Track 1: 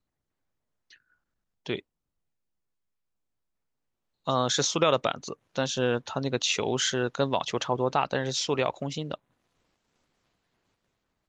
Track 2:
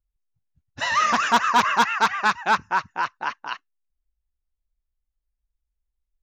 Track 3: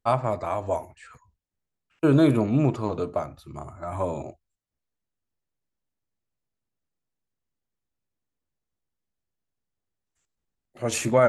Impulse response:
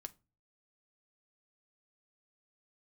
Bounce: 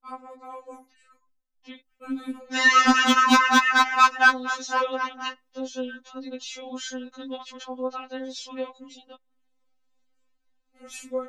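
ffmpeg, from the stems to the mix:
-filter_complex "[0:a]volume=-12dB,asplit=2[link_01][link_02];[1:a]highpass=frequency=90:poles=1,bass=frequency=250:gain=12,treble=frequency=4000:gain=0,adelay=1750,volume=1.5dB,asplit=2[link_03][link_04];[link_04]volume=-6.5dB[link_05];[2:a]asubboost=boost=4.5:cutoff=73,volume=-15dB,asplit=2[link_06][link_07];[link_07]volume=-11.5dB[link_08];[link_02]apad=whole_len=351642[link_09];[link_03][link_09]sidechaincompress=threshold=-44dB:ratio=6:attack=16:release=554[link_10];[3:a]atrim=start_sample=2205[link_11];[link_05][link_08]amix=inputs=2:normalize=0[link_12];[link_12][link_11]afir=irnorm=-1:irlink=0[link_13];[link_01][link_10][link_06][link_13]amix=inputs=4:normalize=0,dynaudnorm=framelen=110:gausssize=7:maxgain=5.5dB,afftfilt=real='re*3.46*eq(mod(b,12),0)':imag='im*3.46*eq(mod(b,12),0)':win_size=2048:overlap=0.75"

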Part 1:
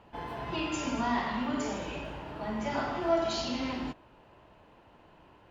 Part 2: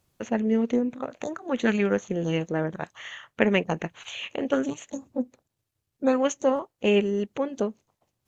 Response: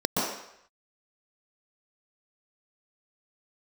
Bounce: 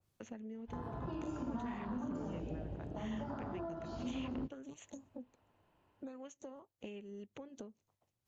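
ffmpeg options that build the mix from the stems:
-filter_complex "[0:a]afwtdn=0.02,acompressor=threshold=-36dB:ratio=6,adelay=550,volume=0.5dB[link_01];[1:a]acompressor=threshold=-33dB:ratio=12,volume=-10dB[link_02];[link_01][link_02]amix=inputs=2:normalize=0,equalizer=frequency=100:width_type=o:width=0.22:gain=8,acrossover=split=330|3000[link_03][link_04][link_05];[link_04]acompressor=threshold=-58dB:ratio=1.5[link_06];[link_03][link_06][link_05]amix=inputs=3:normalize=0,adynamicequalizer=threshold=0.00112:dfrequency=2300:dqfactor=0.7:tfrequency=2300:tqfactor=0.7:attack=5:release=100:ratio=0.375:range=2:mode=cutabove:tftype=highshelf"

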